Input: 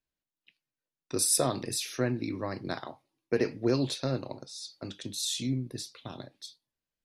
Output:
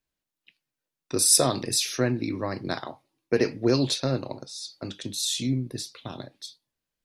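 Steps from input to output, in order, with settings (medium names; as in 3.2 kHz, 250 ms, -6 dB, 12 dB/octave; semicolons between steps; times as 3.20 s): 1.25–4.00 s: dynamic bell 5.5 kHz, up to +5 dB, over -44 dBFS, Q 0.79; trim +4.5 dB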